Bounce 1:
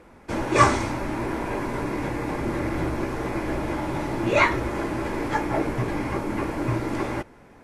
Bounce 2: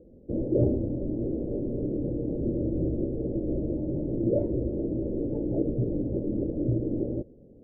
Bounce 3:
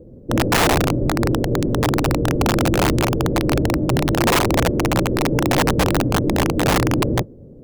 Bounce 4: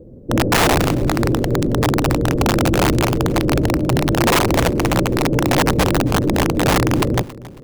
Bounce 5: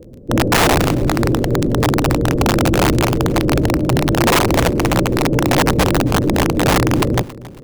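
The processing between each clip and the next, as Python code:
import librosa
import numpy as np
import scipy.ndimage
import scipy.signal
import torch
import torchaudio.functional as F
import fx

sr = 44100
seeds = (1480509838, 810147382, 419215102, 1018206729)

y1 = scipy.signal.sosfilt(scipy.signal.ellip(4, 1.0, 50, 540.0, 'lowpass', fs=sr, output='sos'), x)
y2 = fx.octave_divider(y1, sr, octaves=1, level_db=-4.0)
y2 = fx.peak_eq(y2, sr, hz=120.0, db=3.5, octaves=0.87)
y2 = (np.mod(10.0 ** (19.5 / 20.0) * y2 + 1.0, 2.0) - 1.0) / 10.0 ** (19.5 / 20.0)
y2 = y2 * librosa.db_to_amplitude(9.0)
y3 = fx.echo_feedback(y2, sr, ms=274, feedback_pct=33, wet_db=-19.0)
y3 = y3 * librosa.db_to_amplitude(1.5)
y4 = fx.dmg_crackle(y3, sr, seeds[0], per_s=15.0, level_db=-32.0)
y4 = y4 * librosa.db_to_amplitude(1.5)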